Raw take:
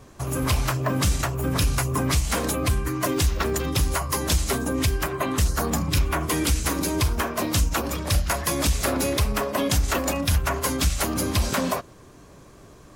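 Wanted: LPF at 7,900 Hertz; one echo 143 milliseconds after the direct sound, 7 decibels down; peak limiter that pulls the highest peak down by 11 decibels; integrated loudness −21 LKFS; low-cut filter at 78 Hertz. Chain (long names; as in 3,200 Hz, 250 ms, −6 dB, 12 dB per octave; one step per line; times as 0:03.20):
high-pass filter 78 Hz
low-pass filter 7,900 Hz
brickwall limiter −21.5 dBFS
single-tap delay 143 ms −7 dB
level +8.5 dB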